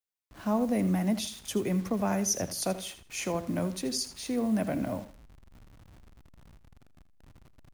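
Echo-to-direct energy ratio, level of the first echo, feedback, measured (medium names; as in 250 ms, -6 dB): -13.5 dB, -13.5 dB, 23%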